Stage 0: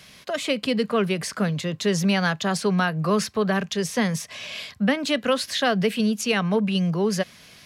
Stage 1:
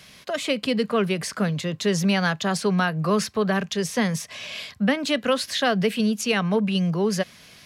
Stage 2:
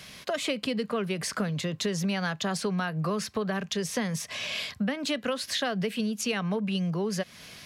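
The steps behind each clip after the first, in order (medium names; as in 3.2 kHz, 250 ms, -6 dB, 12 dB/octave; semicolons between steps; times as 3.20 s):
no audible change
compression 5:1, threshold -29 dBFS, peak gain reduction 12 dB; trim +2 dB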